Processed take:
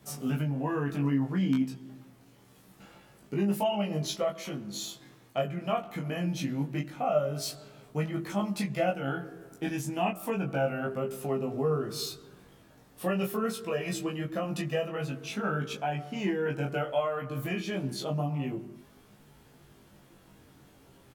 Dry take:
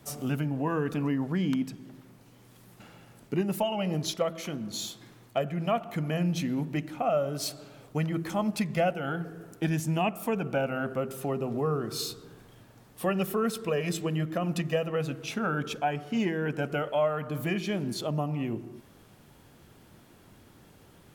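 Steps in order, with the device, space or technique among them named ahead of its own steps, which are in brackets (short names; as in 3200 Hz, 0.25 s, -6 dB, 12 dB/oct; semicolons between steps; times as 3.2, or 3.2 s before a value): double-tracked vocal (doubler 15 ms -4.5 dB; chorus 0.26 Hz, delay 19.5 ms, depth 2.9 ms)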